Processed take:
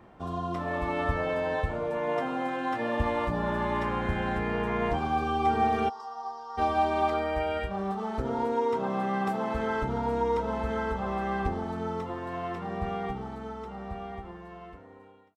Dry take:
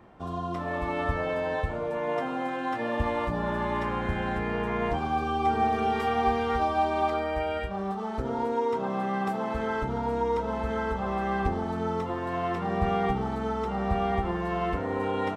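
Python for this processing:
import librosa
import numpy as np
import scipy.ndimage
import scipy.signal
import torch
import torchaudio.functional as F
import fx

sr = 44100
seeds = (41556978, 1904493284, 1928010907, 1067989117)

y = fx.fade_out_tail(x, sr, length_s=5.06)
y = fx.double_bandpass(y, sr, hz=2300.0, octaves=2.4, at=(5.88, 6.57), fade=0.02)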